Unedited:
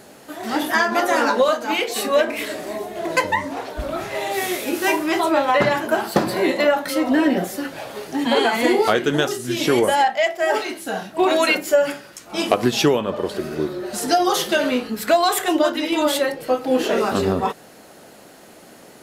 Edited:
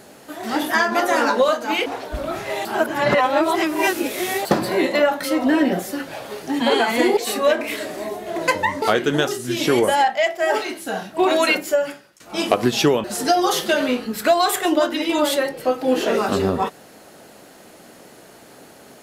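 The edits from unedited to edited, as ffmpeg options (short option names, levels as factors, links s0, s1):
-filter_complex "[0:a]asplit=8[s0][s1][s2][s3][s4][s5][s6][s7];[s0]atrim=end=1.862[s8];[s1]atrim=start=3.508:end=4.302[s9];[s2]atrim=start=4.298:end=6.102,asetpts=PTS-STARTPTS,areverse[s10];[s3]atrim=start=6.098:end=8.822[s11];[s4]atrim=start=1.858:end=3.512[s12];[s5]atrim=start=8.818:end=12.2,asetpts=PTS-STARTPTS,afade=t=out:st=2.742:d=0.64:silence=0.112202[s13];[s6]atrim=start=12.2:end=13.042,asetpts=PTS-STARTPTS,afade=t=in:d=0.004:c=hsin:silence=0.112202[s14];[s7]atrim=start=13.868[s15];[s8][s9]acrossfade=d=0.004:c1=hsin:c2=hsin[s16];[s16][s10]acrossfade=d=0.004:c1=hsin:c2=hsin[s17];[s17][s11]acrossfade=d=0.004:c1=hsin:c2=hsin[s18];[s18][s12]acrossfade=d=0.004:c1=hsin:c2=hsin[s19];[s13][s14]concat=n=2:v=0:a=1[s20];[s19][s20]acrossfade=d=0.004:c1=hsin:c2=hsin[s21];[s21][s15]acrossfade=d=0.004:c1=hsin:c2=hsin"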